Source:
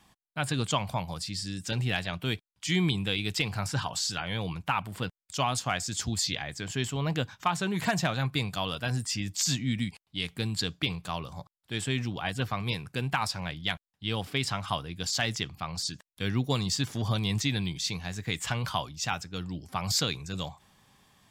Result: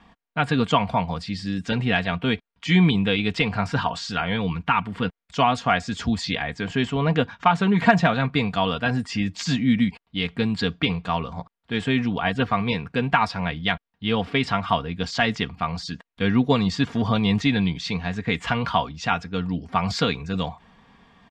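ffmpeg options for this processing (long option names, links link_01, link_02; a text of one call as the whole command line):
ffmpeg -i in.wav -filter_complex "[0:a]asettb=1/sr,asplit=3[link_01][link_02][link_03];[link_01]atrim=end=4.364[link_04];[link_02]atrim=start=4.36:end=5.05,asetpts=PTS-STARTPTS,afade=type=in:duration=0.004:curve=qsin,afade=type=out:start_time=0.686:duration=0.004:curve=qsin,equalizer=frequency=640:width_type=o:width=0.77:gain=-7.5[link_05];[link_03]atrim=start=5.046[link_06];[link_04][link_05]acrossfade=duration=0.004:curve1=hsin:curve2=qsin[link_07];[link_07][link_06]acrossfade=duration=0.004:curve1=qsin:curve2=hsin,lowpass=2500,aecho=1:1:4.3:0.54,volume=9dB" out.wav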